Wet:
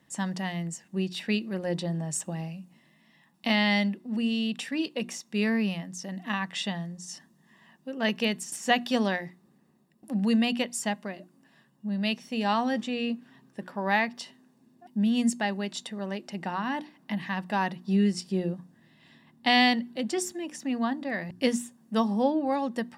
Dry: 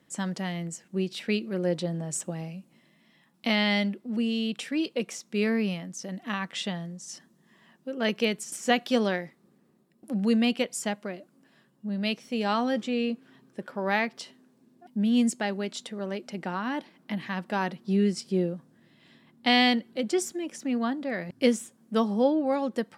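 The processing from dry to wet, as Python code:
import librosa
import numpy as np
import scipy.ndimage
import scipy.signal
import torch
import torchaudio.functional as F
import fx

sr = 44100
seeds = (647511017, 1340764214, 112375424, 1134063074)

y = fx.hum_notches(x, sr, base_hz=60, count=6)
y = y + 0.39 * np.pad(y, (int(1.1 * sr / 1000.0), 0))[:len(y)]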